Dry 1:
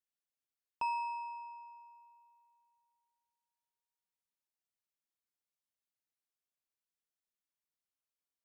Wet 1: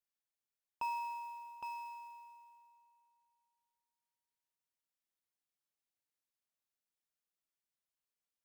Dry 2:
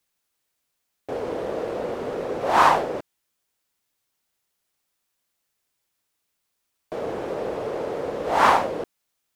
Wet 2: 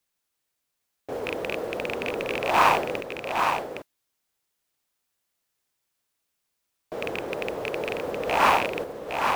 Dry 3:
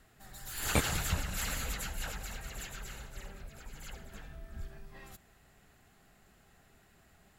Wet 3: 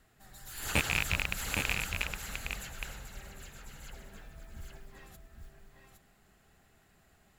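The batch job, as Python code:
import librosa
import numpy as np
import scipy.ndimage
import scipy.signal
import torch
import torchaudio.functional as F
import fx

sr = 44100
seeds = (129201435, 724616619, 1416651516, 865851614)

p1 = fx.rattle_buzz(x, sr, strikes_db=-34.0, level_db=-11.0)
p2 = fx.mod_noise(p1, sr, seeds[0], snr_db=25)
p3 = p2 + fx.echo_single(p2, sr, ms=813, db=-5.0, dry=0)
y = F.gain(torch.from_numpy(p3), -3.0).numpy()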